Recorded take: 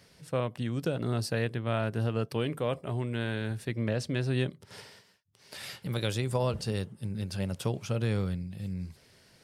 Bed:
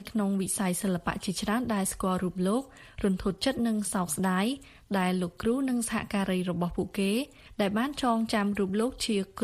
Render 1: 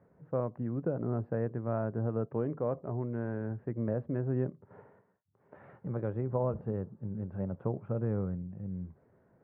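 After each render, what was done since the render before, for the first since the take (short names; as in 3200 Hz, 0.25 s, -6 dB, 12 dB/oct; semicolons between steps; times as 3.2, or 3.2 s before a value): Bessel low-pass 870 Hz, order 6; low shelf 79 Hz -11 dB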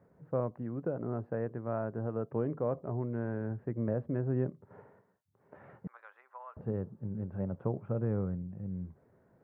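0.51–2.28 low shelf 270 Hz -5.5 dB; 5.87–6.57 HPF 1100 Hz 24 dB/oct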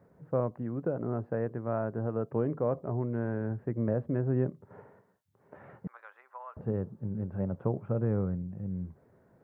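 gain +3 dB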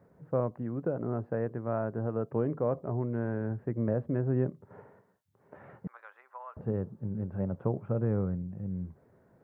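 nothing audible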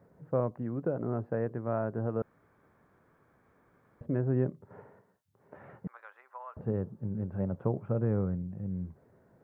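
2.22–4.01 room tone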